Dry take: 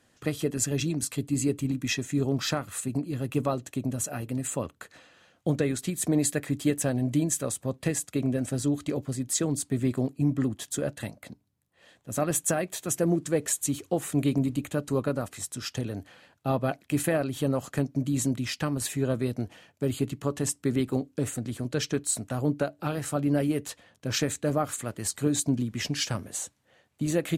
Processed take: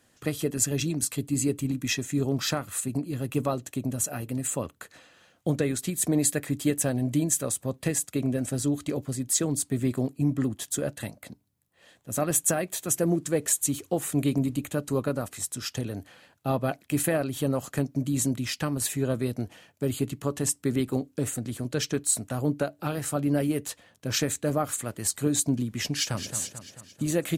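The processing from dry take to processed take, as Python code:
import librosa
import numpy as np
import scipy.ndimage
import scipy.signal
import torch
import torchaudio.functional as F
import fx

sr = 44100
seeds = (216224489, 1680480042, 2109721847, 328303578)

y = fx.echo_throw(x, sr, start_s=25.94, length_s=0.42, ms=220, feedback_pct=55, wet_db=-9.5)
y = fx.high_shelf(y, sr, hz=9000.0, db=8.0)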